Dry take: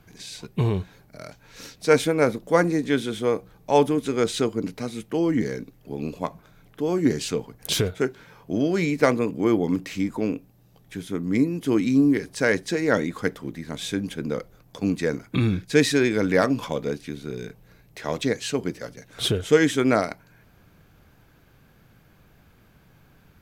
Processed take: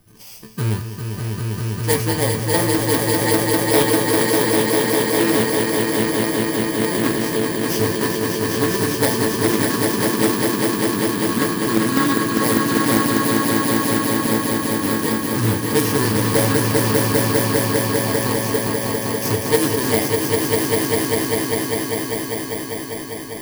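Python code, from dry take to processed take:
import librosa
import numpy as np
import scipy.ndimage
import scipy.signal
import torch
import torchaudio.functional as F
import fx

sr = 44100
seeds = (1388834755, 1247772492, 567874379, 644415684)

y = fx.bit_reversed(x, sr, seeds[0], block=32)
y = fx.comb_fb(y, sr, f0_hz=110.0, decay_s=0.38, harmonics='all', damping=0.0, mix_pct=80)
y = fx.echo_swell(y, sr, ms=199, loudest=5, wet_db=-4)
y = fx.doppler_dist(y, sr, depth_ms=0.32)
y = y * librosa.db_to_amplitude(8.5)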